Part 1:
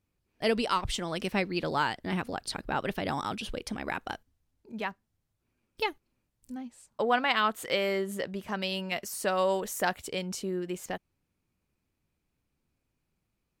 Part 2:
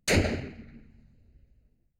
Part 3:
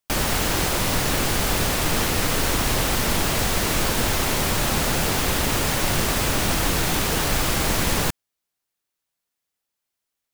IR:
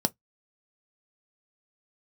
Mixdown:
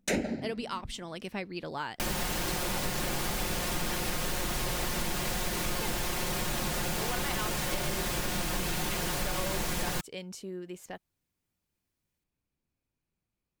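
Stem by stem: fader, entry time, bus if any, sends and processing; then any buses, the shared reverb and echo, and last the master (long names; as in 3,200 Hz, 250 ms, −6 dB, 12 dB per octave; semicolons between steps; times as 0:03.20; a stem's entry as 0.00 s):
−7.0 dB, 0.00 s, no send, no processing
−2.0 dB, 0.00 s, send −12 dB, automatic ducking −15 dB, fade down 0.25 s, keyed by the first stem
−6.5 dB, 1.90 s, no send, comb filter 5.6 ms, depth 56%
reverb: on, pre-delay 3 ms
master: notch filter 1,300 Hz, Q 30; downward compressor 2.5 to 1, threshold −30 dBFS, peak gain reduction 9 dB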